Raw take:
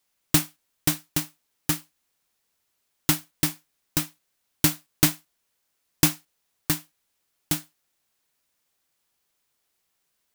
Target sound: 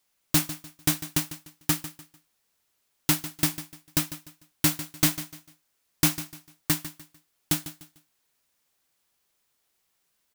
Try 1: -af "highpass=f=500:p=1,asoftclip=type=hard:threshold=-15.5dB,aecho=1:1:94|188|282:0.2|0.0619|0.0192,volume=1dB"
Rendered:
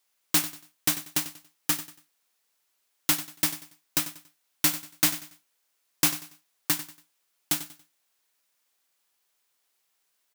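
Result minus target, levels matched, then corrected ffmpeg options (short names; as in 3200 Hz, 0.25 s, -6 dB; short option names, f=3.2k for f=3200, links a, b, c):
echo 55 ms early; 500 Hz band -2.5 dB
-af "asoftclip=type=hard:threshold=-15.5dB,aecho=1:1:149|298|447:0.2|0.0619|0.0192,volume=1dB"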